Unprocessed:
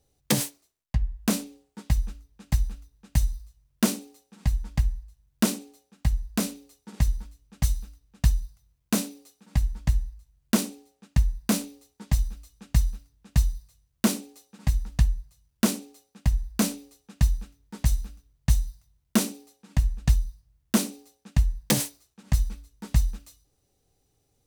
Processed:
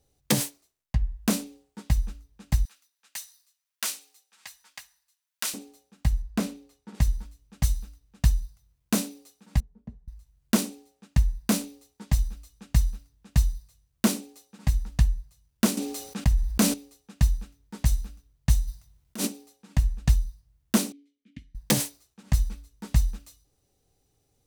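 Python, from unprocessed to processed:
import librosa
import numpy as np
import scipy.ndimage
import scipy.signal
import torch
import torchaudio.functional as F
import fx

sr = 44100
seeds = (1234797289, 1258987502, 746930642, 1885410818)

y = fx.highpass(x, sr, hz=1400.0, slope=12, at=(2.65, 5.54))
y = fx.high_shelf(y, sr, hz=4400.0, db=-10.5, at=(6.22, 6.95))
y = fx.double_bandpass(y, sr, hz=310.0, octaves=0.87, at=(9.6, 10.08))
y = fx.env_flatten(y, sr, amount_pct=50, at=(15.77, 16.74))
y = fx.over_compress(y, sr, threshold_db=-30.0, ratio=-1.0, at=(18.67, 19.26), fade=0.02)
y = fx.vowel_filter(y, sr, vowel='i', at=(20.92, 21.55))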